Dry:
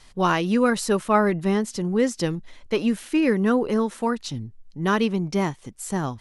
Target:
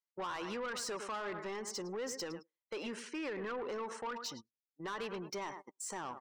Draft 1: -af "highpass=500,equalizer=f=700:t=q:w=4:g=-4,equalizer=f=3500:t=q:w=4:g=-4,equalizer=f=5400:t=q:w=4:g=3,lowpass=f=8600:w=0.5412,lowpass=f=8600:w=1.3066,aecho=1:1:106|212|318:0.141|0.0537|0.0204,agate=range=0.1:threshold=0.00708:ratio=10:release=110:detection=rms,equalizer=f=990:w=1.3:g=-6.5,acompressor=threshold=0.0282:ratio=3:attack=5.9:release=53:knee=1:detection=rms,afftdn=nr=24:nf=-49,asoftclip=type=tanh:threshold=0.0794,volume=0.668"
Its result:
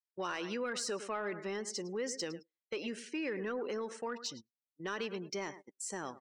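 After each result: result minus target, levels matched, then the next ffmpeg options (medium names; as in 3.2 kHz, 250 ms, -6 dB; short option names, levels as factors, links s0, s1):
saturation: distortion -14 dB; 1 kHz band -3.5 dB
-af "highpass=500,equalizer=f=700:t=q:w=4:g=-4,equalizer=f=3500:t=q:w=4:g=-4,equalizer=f=5400:t=q:w=4:g=3,lowpass=f=8600:w=0.5412,lowpass=f=8600:w=1.3066,aecho=1:1:106|212|318:0.141|0.0537|0.0204,agate=range=0.1:threshold=0.00708:ratio=10:release=110:detection=rms,equalizer=f=990:w=1.3:g=-6.5,acompressor=threshold=0.0282:ratio=3:attack=5.9:release=53:knee=1:detection=rms,afftdn=nr=24:nf=-49,asoftclip=type=tanh:threshold=0.0266,volume=0.668"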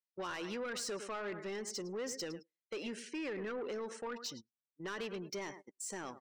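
1 kHz band -4.0 dB
-af "highpass=500,equalizer=f=700:t=q:w=4:g=-4,equalizer=f=3500:t=q:w=4:g=-4,equalizer=f=5400:t=q:w=4:g=3,lowpass=f=8600:w=0.5412,lowpass=f=8600:w=1.3066,aecho=1:1:106|212|318:0.141|0.0537|0.0204,agate=range=0.1:threshold=0.00708:ratio=10:release=110:detection=rms,equalizer=f=990:w=1.3:g=3,acompressor=threshold=0.0282:ratio=3:attack=5.9:release=53:knee=1:detection=rms,afftdn=nr=24:nf=-49,asoftclip=type=tanh:threshold=0.0266,volume=0.668"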